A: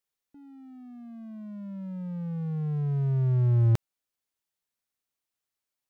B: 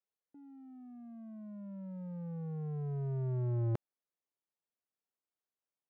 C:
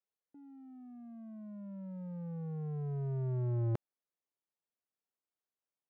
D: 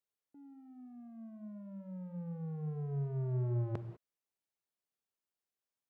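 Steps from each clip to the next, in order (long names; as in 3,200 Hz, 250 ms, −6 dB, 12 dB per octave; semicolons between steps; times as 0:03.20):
resonant band-pass 470 Hz, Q 0.67; level −3 dB
no processing that can be heard
stylus tracing distortion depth 0.055 ms; reverb whose tail is shaped and stops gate 220 ms flat, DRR 9.5 dB; level −1.5 dB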